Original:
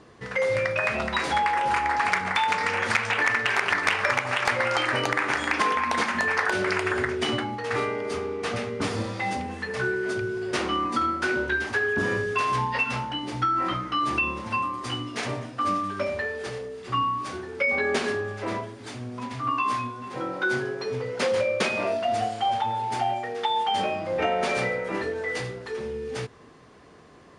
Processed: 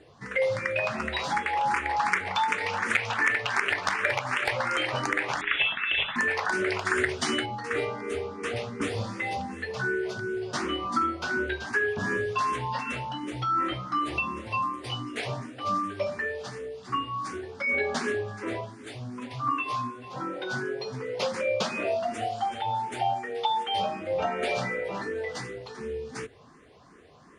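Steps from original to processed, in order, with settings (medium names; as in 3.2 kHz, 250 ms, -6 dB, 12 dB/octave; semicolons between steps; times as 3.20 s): 5.41–6.16 s: frequency inversion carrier 3.7 kHz; 6.85–7.46 s: treble shelf 2.3 kHz +9.5 dB; barber-pole phaser +2.7 Hz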